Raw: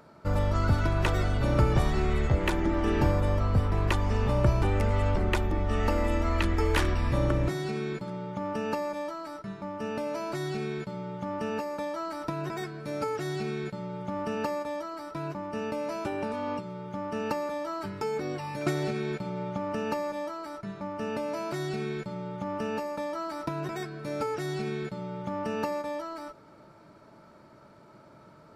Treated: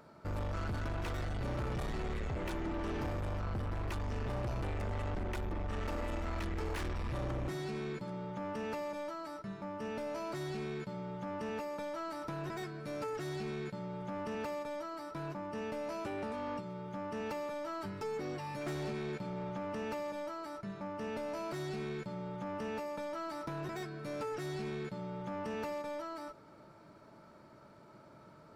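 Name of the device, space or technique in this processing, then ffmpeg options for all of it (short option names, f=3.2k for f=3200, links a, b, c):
saturation between pre-emphasis and de-emphasis: -af "highshelf=f=3.5k:g=10.5,asoftclip=type=tanh:threshold=-30.5dB,highshelf=f=3.5k:g=-10.5,volume=-3.5dB"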